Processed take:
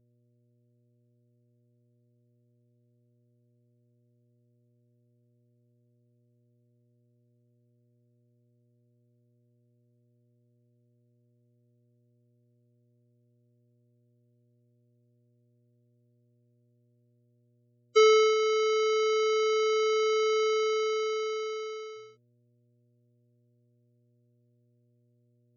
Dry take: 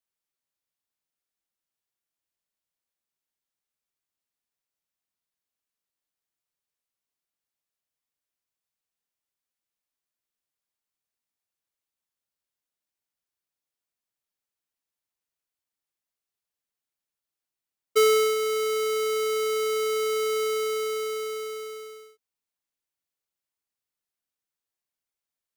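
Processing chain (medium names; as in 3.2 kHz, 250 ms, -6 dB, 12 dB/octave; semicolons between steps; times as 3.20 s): mains buzz 120 Hz, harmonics 5, -68 dBFS -7 dB/octave; spectral gate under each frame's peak -25 dB strong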